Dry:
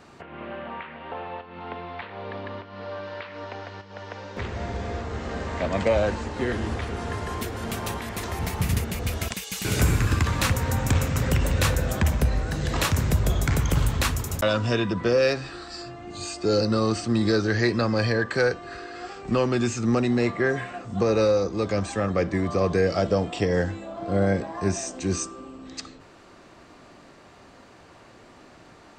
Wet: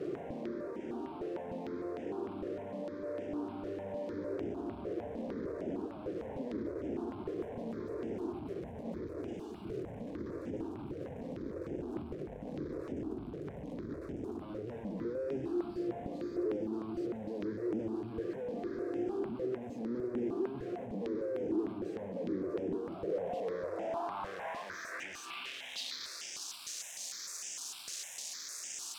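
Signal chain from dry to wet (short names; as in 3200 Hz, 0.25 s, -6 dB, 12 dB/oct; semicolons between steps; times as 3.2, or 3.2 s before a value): infinite clipping; diffused feedback echo 0.973 s, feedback 72%, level -10 dB; band-pass sweep 320 Hz -> 6500 Hz, 22.8–26.6; dynamic EQ 440 Hz, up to +4 dB, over -44 dBFS, Q 1; step phaser 6.6 Hz 240–4200 Hz; gain -4.5 dB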